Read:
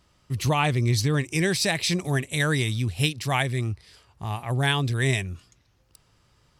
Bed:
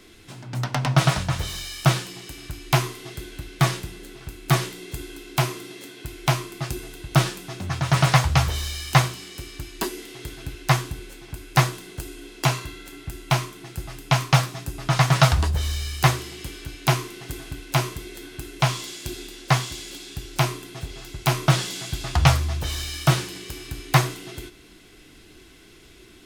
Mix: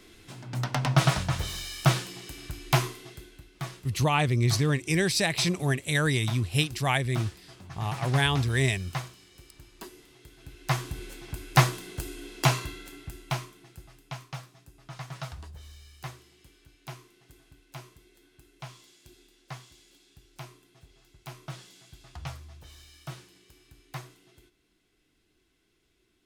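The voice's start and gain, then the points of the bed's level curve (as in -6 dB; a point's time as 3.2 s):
3.55 s, -1.5 dB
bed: 2.84 s -3.5 dB
3.52 s -16.5 dB
10.3 s -16.5 dB
11.03 s -1.5 dB
12.66 s -1.5 dB
14.36 s -22 dB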